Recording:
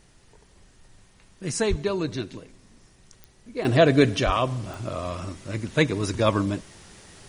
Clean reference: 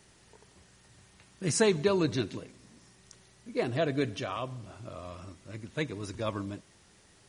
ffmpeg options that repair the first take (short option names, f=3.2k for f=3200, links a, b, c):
-filter_complex "[0:a]adeclick=t=4,asplit=3[a][b][c];[a]afade=t=out:st=1.69:d=0.02[d];[b]highpass=f=140:w=0.5412,highpass=f=140:w=1.3066,afade=t=in:st=1.69:d=0.02,afade=t=out:st=1.81:d=0.02[e];[c]afade=t=in:st=1.81:d=0.02[f];[d][e][f]amix=inputs=3:normalize=0,asplit=3[g][h][i];[g]afade=t=out:st=4.25:d=0.02[j];[h]highpass=f=140:w=0.5412,highpass=f=140:w=1.3066,afade=t=in:st=4.25:d=0.02,afade=t=out:st=4.37:d=0.02[k];[i]afade=t=in:st=4.37:d=0.02[l];[j][k][l]amix=inputs=3:normalize=0,agate=range=-21dB:threshold=-48dB,asetnsamples=n=441:p=0,asendcmd='3.65 volume volume -12dB',volume=0dB"